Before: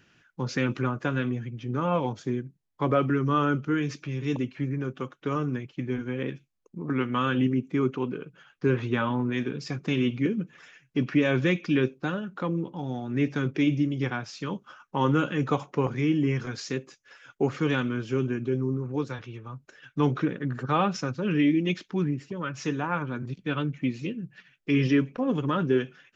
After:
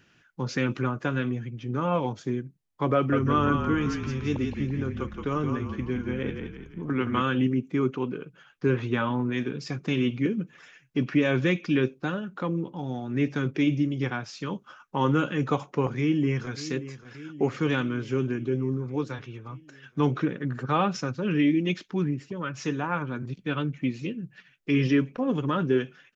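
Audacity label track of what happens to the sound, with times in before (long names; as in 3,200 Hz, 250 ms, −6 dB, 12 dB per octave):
2.950000	7.220000	echo with shifted repeats 171 ms, feedback 45%, per repeat −36 Hz, level −5.5 dB
15.980000	16.570000	delay throw 580 ms, feedback 70%, level −14 dB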